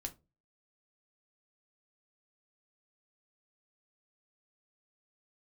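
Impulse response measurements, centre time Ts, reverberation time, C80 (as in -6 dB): 6 ms, no single decay rate, 27.0 dB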